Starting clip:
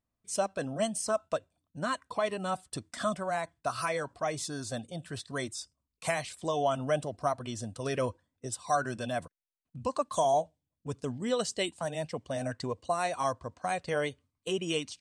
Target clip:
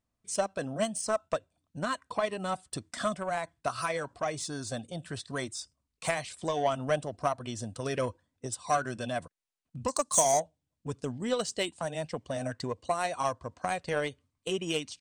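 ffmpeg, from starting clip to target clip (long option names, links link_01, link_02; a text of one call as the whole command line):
ffmpeg -i in.wav -filter_complex "[0:a]asettb=1/sr,asplit=3[link_01][link_02][link_03];[link_01]atrim=end=9.884[link_04];[link_02]atrim=start=9.88:end=10.4,asetpts=PTS-STARTPTS,afade=type=in:duration=0.004:curve=qsin,afade=type=out:start_time=0.516:duration=0.004:curve=qsin,highshelf=frequency=4200:width_type=q:width=1.5:gain=13.5[link_05];[link_03]atrim=start=10.396[link_06];[link_04][link_05]acrossfade=duration=0.004:curve1=hsin:curve2=qsin[link_07];[link_07][link_06]acrossfade=duration=0.004:curve1=qsin:curve2=hsin,asplit=2[link_08][link_09];[link_09]acompressor=threshold=-40dB:ratio=6,volume=2dB[link_10];[link_08][link_10]amix=inputs=2:normalize=0,aresample=22050,aresample=44100,aeval=exprs='0.335*(cos(1*acos(clip(val(0)/0.335,-1,1)))-cos(1*PI/2))+0.0188*(cos(7*acos(clip(val(0)/0.335,-1,1)))-cos(7*PI/2))':channel_layout=same" out.wav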